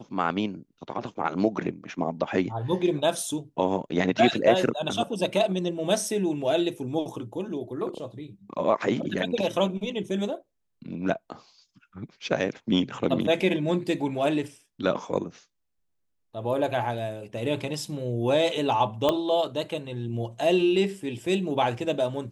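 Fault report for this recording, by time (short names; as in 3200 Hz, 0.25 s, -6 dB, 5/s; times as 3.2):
19.09 pop -10 dBFS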